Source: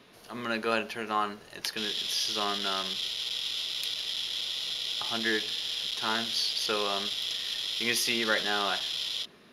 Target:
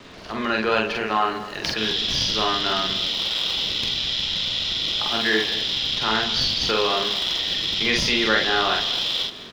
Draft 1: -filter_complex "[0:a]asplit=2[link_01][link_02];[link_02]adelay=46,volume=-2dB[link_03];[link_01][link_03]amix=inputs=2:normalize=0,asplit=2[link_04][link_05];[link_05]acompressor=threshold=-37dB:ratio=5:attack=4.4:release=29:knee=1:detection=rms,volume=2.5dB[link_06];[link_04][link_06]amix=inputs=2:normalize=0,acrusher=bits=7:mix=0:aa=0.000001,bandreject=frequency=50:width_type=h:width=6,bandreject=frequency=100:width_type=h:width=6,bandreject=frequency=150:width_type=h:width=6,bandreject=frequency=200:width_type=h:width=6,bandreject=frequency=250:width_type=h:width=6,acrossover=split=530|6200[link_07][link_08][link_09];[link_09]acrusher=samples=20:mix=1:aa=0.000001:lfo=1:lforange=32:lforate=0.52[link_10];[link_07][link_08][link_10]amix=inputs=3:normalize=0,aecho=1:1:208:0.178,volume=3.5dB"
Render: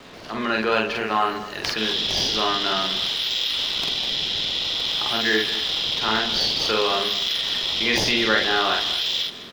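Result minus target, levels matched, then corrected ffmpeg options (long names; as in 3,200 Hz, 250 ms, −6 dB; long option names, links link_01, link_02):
sample-and-hold swept by an LFO: distortion −10 dB
-filter_complex "[0:a]asplit=2[link_01][link_02];[link_02]adelay=46,volume=-2dB[link_03];[link_01][link_03]amix=inputs=2:normalize=0,asplit=2[link_04][link_05];[link_05]acompressor=threshold=-37dB:ratio=5:attack=4.4:release=29:knee=1:detection=rms,volume=2.5dB[link_06];[link_04][link_06]amix=inputs=2:normalize=0,acrusher=bits=7:mix=0:aa=0.000001,bandreject=frequency=50:width_type=h:width=6,bandreject=frequency=100:width_type=h:width=6,bandreject=frequency=150:width_type=h:width=6,bandreject=frequency=200:width_type=h:width=6,bandreject=frequency=250:width_type=h:width=6,acrossover=split=530|6200[link_07][link_08][link_09];[link_09]acrusher=samples=67:mix=1:aa=0.000001:lfo=1:lforange=107:lforate=0.52[link_10];[link_07][link_08][link_10]amix=inputs=3:normalize=0,aecho=1:1:208:0.178,volume=3.5dB"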